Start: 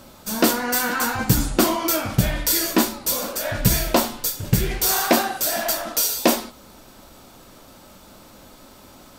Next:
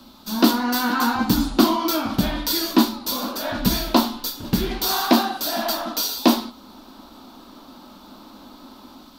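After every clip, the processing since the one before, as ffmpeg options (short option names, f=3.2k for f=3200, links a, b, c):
-filter_complex "[0:a]equalizer=f=125:t=o:w=1:g=-10,equalizer=f=250:t=o:w=1:g=11,equalizer=f=500:t=o:w=1:g=-9,equalizer=f=1k:t=o:w=1:g=5,equalizer=f=2k:t=o:w=1:g=-7,equalizer=f=4k:t=o:w=1:g=11,equalizer=f=8k:t=o:w=1:g=-9,acrossover=split=230|1700|3600[a][b][c][d];[b]dynaudnorm=f=140:g=5:m=7dB[e];[a][e][c][d]amix=inputs=4:normalize=0,volume=-3.5dB"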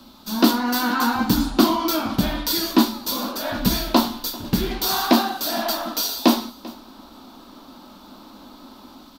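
-af "aecho=1:1:392:0.0944"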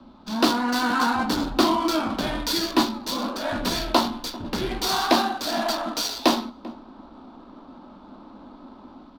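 -filter_complex "[0:a]acrossover=split=270|1100[a][b][c];[a]aeval=exprs='0.0398*(abs(mod(val(0)/0.0398+3,4)-2)-1)':c=same[d];[c]adynamicsmooth=sensitivity=6:basefreq=1.7k[e];[d][b][e]amix=inputs=3:normalize=0"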